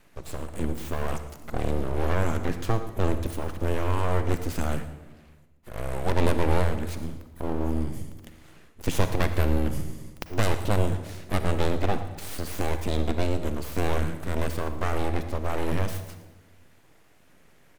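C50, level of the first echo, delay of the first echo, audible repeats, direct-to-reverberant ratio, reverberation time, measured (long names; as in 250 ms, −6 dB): 9.5 dB, −16.0 dB, 113 ms, 1, 8.5 dB, 1.2 s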